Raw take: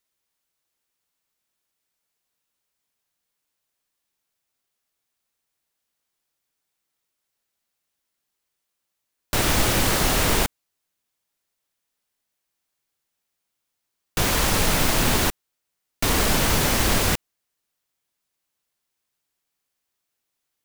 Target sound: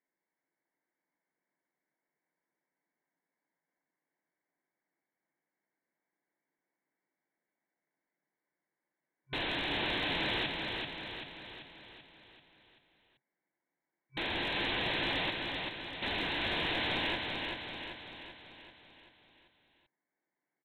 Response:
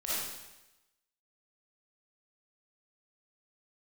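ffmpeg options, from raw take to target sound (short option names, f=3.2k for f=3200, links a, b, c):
-af "afftfilt=real='re*between(b*sr/4096,130,2300)':imag='im*between(b*sr/4096,130,2300)':win_size=4096:overlap=0.75,aresample=8000,aeval=exprs='(mod(25.1*val(0)+1,2)-1)/25.1':c=same,aresample=44100,superequalizer=6b=1.78:10b=0.398,volume=26dB,asoftclip=hard,volume=-26dB,aecho=1:1:387|774|1161|1548|1935|2322|2709:0.631|0.341|0.184|0.0994|0.0537|0.029|0.0156,volume=-2dB"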